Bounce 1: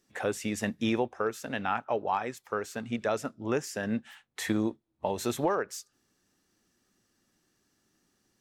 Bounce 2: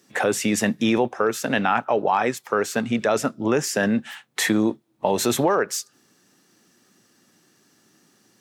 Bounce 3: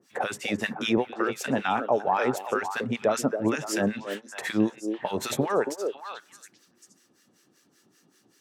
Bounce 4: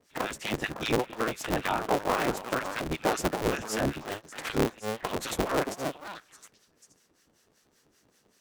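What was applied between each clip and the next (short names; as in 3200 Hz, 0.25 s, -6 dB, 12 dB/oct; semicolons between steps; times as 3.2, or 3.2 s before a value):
HPF 120 Hz 24 dB/oct; in parallel at -0.5 dB: negative-ratio compressor -33 dBFS, ratio -1; on the sum: gain +5.5 dB
harmonic tremolo 5.2 Hz, depth 100%, crossover 1100 Hz; delay with a stepping band-pass 0.278 s, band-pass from 420 Hz, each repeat 1.4 oct, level -4 dB
cycle switcher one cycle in 3, inverted; gain -3 dB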